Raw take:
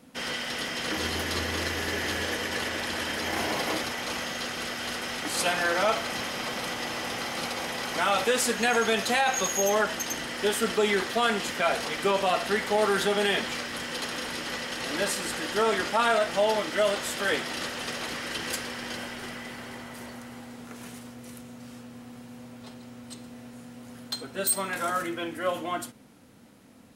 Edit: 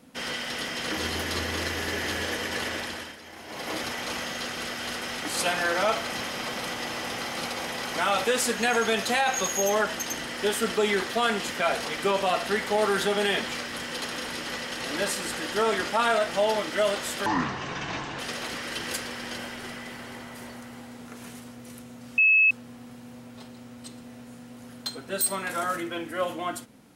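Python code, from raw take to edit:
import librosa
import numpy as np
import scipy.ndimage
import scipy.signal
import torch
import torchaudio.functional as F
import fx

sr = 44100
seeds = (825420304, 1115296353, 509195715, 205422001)

y = fx.edit(x, sr, fx.fade_down_up(start_s=2.74, length_s=1.14, db=-15.0, fade_s=0.43),
    fx.speed_span(start_s=17.26, length_s=0.52, speed=0.56),
    fx.insert_tone(at_s=21.77, length_s=0.33, hz=2590.0, db=-15.5), tone=tone)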